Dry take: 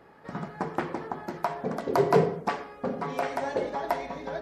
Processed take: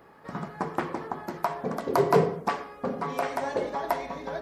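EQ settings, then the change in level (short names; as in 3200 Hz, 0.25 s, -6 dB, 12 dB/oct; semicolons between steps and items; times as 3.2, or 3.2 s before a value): bell 1100 Hz +4.5 dB 0.27 oct; high shelf 11000 Hz +10.5 dB; 0.0 dB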